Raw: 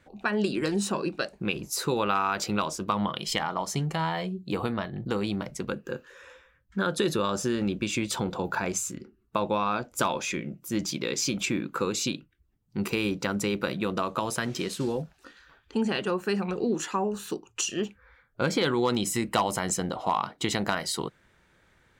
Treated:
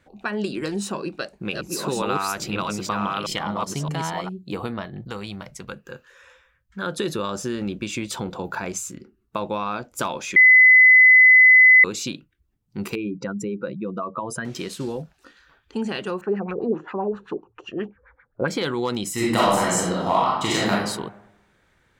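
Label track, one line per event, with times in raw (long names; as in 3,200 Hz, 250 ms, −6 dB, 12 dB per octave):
0.780000	4.290000	delay that plays each chunk backwards 621 ms, level −2 dB
5.010000	6.830000	parametric band 310 Hz −9 dB 1.5 octaves
10.360000	11.840000	beep over 2,020 Hz −8 dBFS
12.950000	14.450000	expanding power law on the bin magnitudes exponent 2
16.210000	18.480000	auto-filter low-pass sine 7.6 Hz 420–2,200 Hz
19.130000	20.700000	thrown reverb, RT60 0.95 s, DRR −7 dB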